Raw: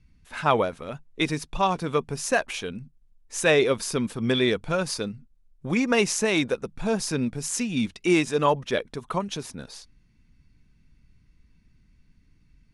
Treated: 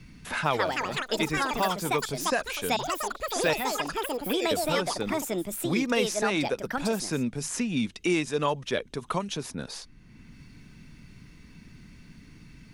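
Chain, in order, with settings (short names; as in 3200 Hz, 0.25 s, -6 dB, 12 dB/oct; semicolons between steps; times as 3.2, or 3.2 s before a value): 3.53–4.51 ladder band-pass 2900 Hz, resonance 75%; echoes that change speed 0.268 s, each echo +6 st, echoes 3; three-band squash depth 70%; gain -4 dB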